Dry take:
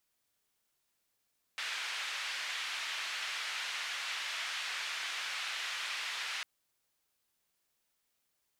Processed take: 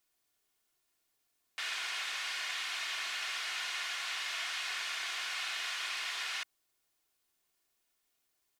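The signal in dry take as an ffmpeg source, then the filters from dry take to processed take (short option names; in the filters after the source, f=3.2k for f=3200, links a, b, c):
-f lavfi -i "anoisesrc=c=white:d=4.85:r=44100:seed=1,highpass=f=1600,lowpass=f=2900,volume=-22.1dB"
-af "equalizer=f=67:t=o:w=0.33:g=-13,aecho=1:1:2.8:0.41"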